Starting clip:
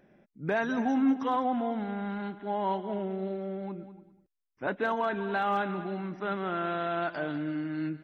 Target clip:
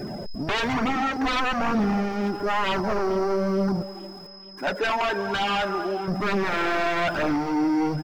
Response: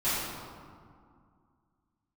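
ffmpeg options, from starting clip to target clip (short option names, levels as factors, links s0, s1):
-filter_complex "[0:a]aeval=exprs='val(0)+0.5*0.0106*sgn(val(0))':c=same,asettb=1/sr,asplit=3[s0][s1][s2];[s0]atrim=end=3.824[s3];[s1]atrim=start=3.82:end=6.08,asetpts=PTS-STARTPTS,afade=t=in:d=0.004:c=qsin,afade=t=out:st=2.256:d=0.004:c=qsin,highpass=f=660:p=1[s4];[s2]atrim=start=6.076[s5];[s3][s4]acrossfade=d=0.004:c1=hsin:c2=qsin[s6];[s6][s5]acrossfade=d=0.004:c1=qsin:c2=hsin,afftdn=nr=15:nf=-44,equalizer=f=2500:w=0.73:g=-5.5,aeval=exprs='val(0)+0.00141*sin(2*PI*5100*n/s)':c=same,aeval=exprs='0.133*sin(PI/2*4.47*val(0)/0.133)':c=same,flanger=delay=0.2:depth=3.1:regen=-27:speed=1.1:shape=triangular,aecho=1:1:441|882|1323|1764:0.0841|0.0471|0.0264|0.0148"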